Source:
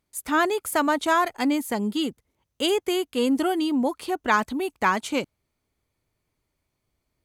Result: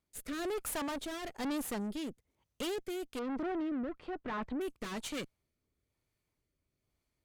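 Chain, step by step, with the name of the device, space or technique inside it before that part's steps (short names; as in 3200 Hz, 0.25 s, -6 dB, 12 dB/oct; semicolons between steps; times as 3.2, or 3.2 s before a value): overdriven rotary cabinet (tube stage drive 33 dB, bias 0.75; rotary speaker horn 1.1 Hz); 3.19–4.61 LPF 1900 Hz 12 dB/oct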